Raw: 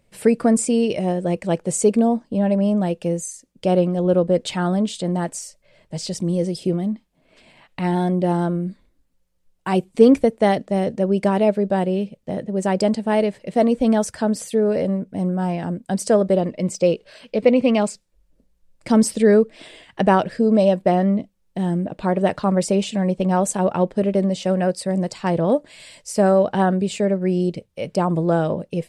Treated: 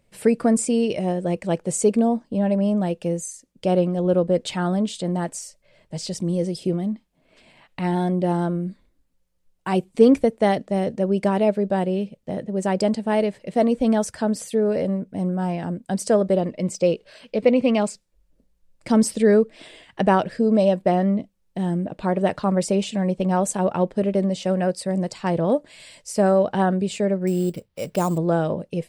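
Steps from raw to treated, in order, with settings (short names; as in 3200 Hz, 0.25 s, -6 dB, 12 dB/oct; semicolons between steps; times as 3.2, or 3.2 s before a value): 27.27–28.18 sample-rate reducer 7900 Hz, jitter 0%; gain -2 dB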